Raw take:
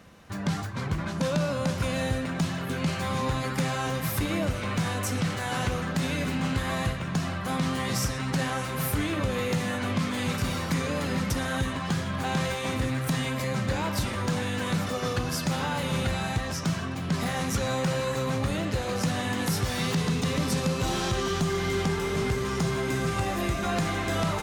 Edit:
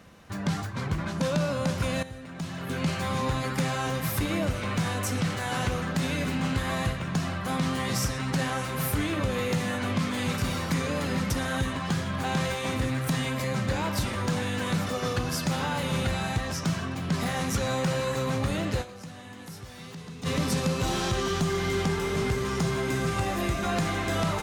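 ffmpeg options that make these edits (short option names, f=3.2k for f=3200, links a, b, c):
-filter_complex "[0:a]asplit=4[a][b][c][d];[a]atrim=end=2.03,asetpts=PTS-STARTPTS,afade=t=out:st=2.026:d=0.004:c=hsin:silence=0.199526[e];[b]atrim=start=2.03:end=19.04,asetpts=PTS-STARTPTS,afade=t=in:d=0.74:c=qua:silence=0.199526,afade=t=out:st=16.78:d=0.23:c=exp:silence=0.177828[f];[c]atrim=start=19.04:end=20.04,asetpts=PTS-STARTPTS,volume=-15dB[g];[d]atrim=start=20.04,asetpts=PTS-STARTPTS,afade=t=in:d=0.23:c=exp:silence=0.177828[h];[e][f][g][h]concat=n=4:v=0:a=1"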